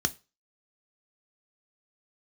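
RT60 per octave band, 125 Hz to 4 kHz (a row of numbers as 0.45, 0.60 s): 0.30, 0.25, 0.30, 0.30, 0.30, 0.30 s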